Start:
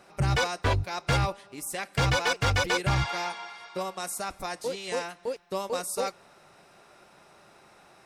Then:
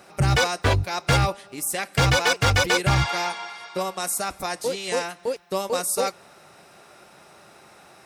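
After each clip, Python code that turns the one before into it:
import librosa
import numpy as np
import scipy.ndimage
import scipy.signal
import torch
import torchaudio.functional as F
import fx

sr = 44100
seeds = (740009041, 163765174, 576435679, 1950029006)

y = scipy.signal.sosfilt(scipy.signal.butter(2, 47.0, 'highpass', fs=sr, output='sos'), x)
y = fx.high_shelf(y, sr, hz=8800.0, db=6.5)
y = fx.notch(y, sr, hz=1000.0, q=27.0)
y = y * 10.0 ** (5.5 / 20.0)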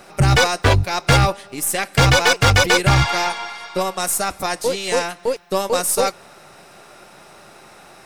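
y = np.where(x < 0.0, 10.0 ** (-3.0 / 20.0) * x, x)
y = y * 10.0 ** (7.0 / 20.0)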